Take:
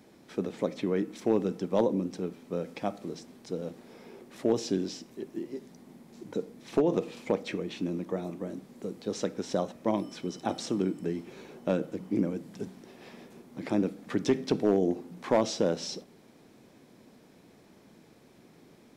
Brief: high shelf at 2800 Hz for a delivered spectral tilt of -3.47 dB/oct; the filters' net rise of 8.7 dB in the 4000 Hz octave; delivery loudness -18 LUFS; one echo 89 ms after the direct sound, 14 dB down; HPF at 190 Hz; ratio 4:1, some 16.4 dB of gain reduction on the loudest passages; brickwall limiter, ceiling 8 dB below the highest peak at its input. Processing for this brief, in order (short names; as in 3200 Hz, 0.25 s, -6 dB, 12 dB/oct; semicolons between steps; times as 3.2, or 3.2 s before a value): HPF 190 Hz; high shelf 2800 Hz +7.5 dB; bell 4000 Hz +4.5 dB; compressor 4:1, threshold -41 dBFS; limiter -32.5 dBFS; echo 89 ms -14 dB; gain +27.5 dB